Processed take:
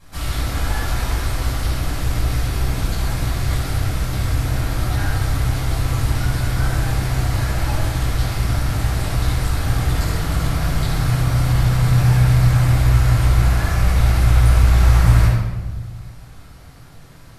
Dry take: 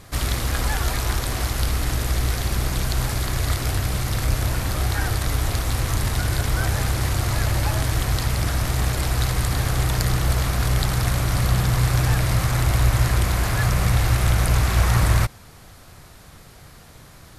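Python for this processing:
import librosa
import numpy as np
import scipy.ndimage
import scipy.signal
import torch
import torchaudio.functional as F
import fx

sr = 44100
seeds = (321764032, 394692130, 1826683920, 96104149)

y = fx.room_shoebox(x, sr, seeds[0], volume_m3=750.0, walls='mixed', distance_m=8.1)
y = F.gain(torch.from_numpy(y), -14.5).numpy()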